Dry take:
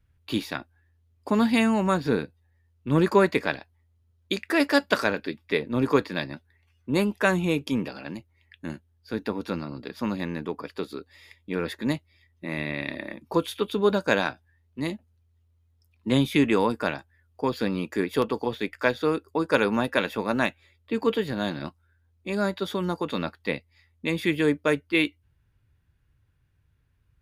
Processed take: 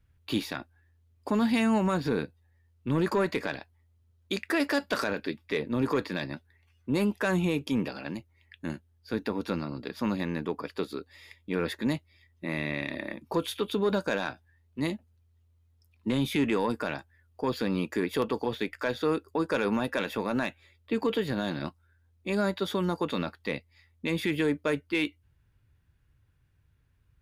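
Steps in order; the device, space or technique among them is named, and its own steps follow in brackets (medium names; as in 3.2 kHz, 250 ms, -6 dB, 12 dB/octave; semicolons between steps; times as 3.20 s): soft clipper into limiter (saturation -11.5 dBFS, distortion -20 dB; peak limiter -18.5 dBFS, peak gain reduction 6.5 dB)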